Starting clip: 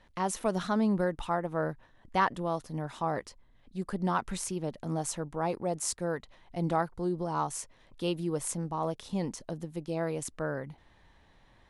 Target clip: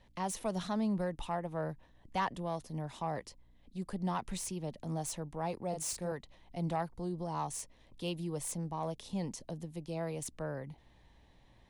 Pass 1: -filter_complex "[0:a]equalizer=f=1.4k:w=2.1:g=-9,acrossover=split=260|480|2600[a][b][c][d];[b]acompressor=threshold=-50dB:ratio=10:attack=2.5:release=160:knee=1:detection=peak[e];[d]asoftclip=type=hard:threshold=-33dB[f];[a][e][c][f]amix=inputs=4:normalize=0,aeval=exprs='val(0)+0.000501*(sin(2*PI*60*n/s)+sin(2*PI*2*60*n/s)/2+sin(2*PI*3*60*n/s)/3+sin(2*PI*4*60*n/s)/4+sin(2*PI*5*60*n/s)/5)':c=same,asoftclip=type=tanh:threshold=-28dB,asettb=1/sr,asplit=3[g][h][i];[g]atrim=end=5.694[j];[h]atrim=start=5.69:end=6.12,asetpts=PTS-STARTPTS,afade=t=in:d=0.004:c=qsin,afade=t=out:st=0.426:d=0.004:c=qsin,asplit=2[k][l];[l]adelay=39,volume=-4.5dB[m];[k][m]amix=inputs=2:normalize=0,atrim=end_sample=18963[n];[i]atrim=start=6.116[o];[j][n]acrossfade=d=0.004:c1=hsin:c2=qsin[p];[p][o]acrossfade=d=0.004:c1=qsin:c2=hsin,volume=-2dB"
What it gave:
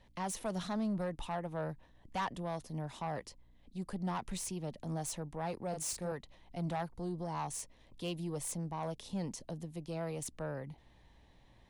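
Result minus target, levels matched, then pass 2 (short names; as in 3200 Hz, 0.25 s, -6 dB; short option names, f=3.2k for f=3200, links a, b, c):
soft clip: distortion +10 dB
-filter_complex "[0:a]equalizer=f=1.4k:w=2.1:g=-9,acrossover=split=260|480|2600[a][b][c][d];[b]acompressor=threshold=-50dB:ratio=10:attack=2.5:release=160:knee=1:detection=peak[e];[d]asoftclip=type=hard:threshold=-33dB[f];[a][e][c][f]amix=inputs=4:normalize=0,aeval=exprs='val(0)+0.000501*(sin(2*PI*60*n/s)+sin(2*PI*2*60*n/s)/2+sin(2*PI*3*60*n/s)/3+sin(2*PI*4*60*n/s)/4+sin(2*PI*5*60*n/s)/5)':c=same,asoftclip=type=tanh:threshold=-20.5dB,asettb=1/sr,asplit=3[g][h][i];[g]atrim=end=5.694[j];[h]atrim=start=5.69:end=6.12,asetpts=PTS-STARTPTS,afade=t=in:d=0.004:c=qsin,afade=t=out:st=0.426:d=0.004:c=qsin,asplit=2[k][l];[l]adelay=39,volume=-4.5dB[m];[k][m]amix=inputs=2:normalize=0,atrim=end_sample=18963[n];[i]atrim=start=6.116[o];[j][n]acrossfade=d=0.004:c1=hsin:c2=qsin[p];[p][o]acrossfade=d=0.004:c1=qsin:c2=hsin,volume=-2dB"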